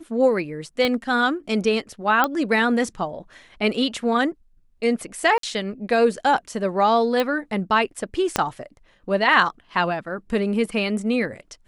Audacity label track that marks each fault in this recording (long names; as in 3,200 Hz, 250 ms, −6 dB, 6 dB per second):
0.850000	0.850000	click −10 dBFS
2.240000	2.240000	click −6 dBFS
5.380000	5.430000	drop-out 53 ms
7.200000	7.200000	click −10 dBFS
8.360000	8.360000	click −4 dBFS